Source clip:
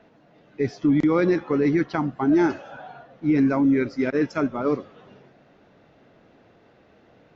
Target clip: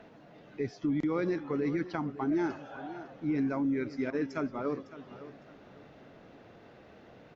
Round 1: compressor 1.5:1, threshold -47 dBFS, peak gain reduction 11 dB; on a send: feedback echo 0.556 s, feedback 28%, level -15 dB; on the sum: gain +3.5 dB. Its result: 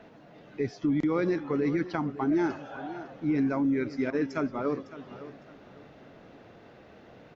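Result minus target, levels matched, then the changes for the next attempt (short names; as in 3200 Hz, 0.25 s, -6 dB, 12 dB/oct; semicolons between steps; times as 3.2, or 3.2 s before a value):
compressor: peak gain reduction -3.5 dB
change: compressor 1.5:1, threshold -58 dBFS, peak gain reduction 15 dB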